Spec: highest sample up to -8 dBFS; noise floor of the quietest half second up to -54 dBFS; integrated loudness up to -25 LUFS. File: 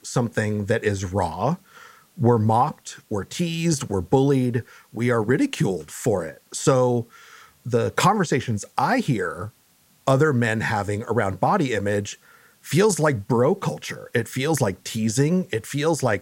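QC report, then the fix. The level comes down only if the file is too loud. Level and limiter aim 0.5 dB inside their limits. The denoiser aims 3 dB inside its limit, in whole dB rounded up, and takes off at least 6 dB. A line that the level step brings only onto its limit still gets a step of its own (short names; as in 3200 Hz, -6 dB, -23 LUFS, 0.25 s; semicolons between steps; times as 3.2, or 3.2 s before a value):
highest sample -4.5 dBFS: fail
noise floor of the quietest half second -59 dBFS: OK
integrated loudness -22.5 LUFS: fail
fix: gain -3 dB; limiter -8.5 dBFS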